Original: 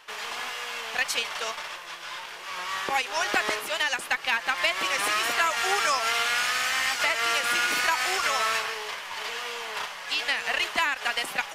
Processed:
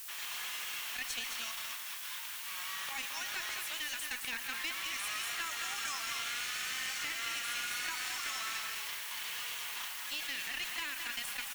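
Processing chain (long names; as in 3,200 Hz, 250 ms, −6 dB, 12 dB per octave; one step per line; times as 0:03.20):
guitar amp tone stack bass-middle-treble 10-0-10
notch filter 4,900 Hz, Q 11
background noise blue −42 dBFS
in parallel at −2 dB: compressor whose output falls as the input rises −37 dBFS, ratio −1
on the sum: low-shelf EQ 490 Hz −6.5 dB
tube saturation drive 16 dB, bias 0.7
loudspeakers that aren't time-aligned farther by 40 metres −12 dB, 75 metres −6 dB
level −7 dB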